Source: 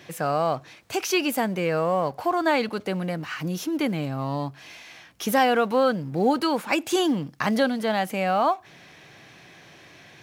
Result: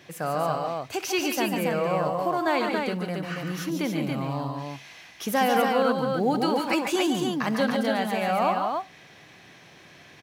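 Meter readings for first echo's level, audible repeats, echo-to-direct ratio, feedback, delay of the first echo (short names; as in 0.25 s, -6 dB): -16.5 dB, 3, -1.5 dB, no steady repeat, 65 ms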